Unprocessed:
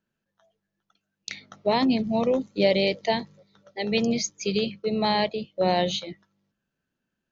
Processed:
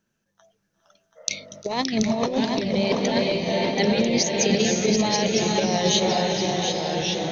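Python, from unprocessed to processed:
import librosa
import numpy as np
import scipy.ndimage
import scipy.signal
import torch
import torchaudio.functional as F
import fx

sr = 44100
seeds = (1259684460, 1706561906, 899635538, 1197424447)

y = fx.peak_eq(x, sr, hz=6000.0, db=10.5, octaves=0.28)
y = fx.echo_diffused(y, sr, ms=471, feedback_pct=54, wet_db=-8.5)
y = fx.over_compress(y, sr, threshold_db=-25.0, ratio=-0.5)
y = fx.echo_pitch(y, sr, ms=413, semitones=-2, count=2, db_per_echo=-6.0)
y = y + 10.0 ** (-6.5 / 20.0) * np.pad(y, (int(731 * sr / 1000.0), 0))[:len(y)]
y = fx.spec_repair(y, sr, seeds[0], start_s=1.19, length_s=0.39, low_hz=470.0, high_hz=2100.0, source='after')
y = F.gain(torch.from_numpy(y), 3.5).numpy()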